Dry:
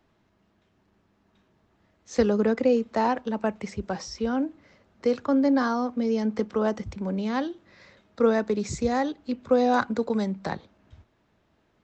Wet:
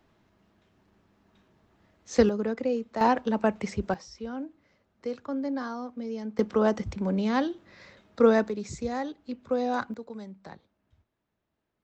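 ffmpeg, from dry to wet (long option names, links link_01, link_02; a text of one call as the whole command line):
ffmpeg -i in.wav -af "asetnsamples=nb_out_samples=441:pad=0,asendcmd='2.29 volume volume -6.5dB;3.01 volume volume 2dB;3.94 volume volume -9.5dB;6.39 volume volume 1.5dB;8.49 volume volume -6.5dB;9.94 volume volume -14.5dB',volume=1.5dB" out.wav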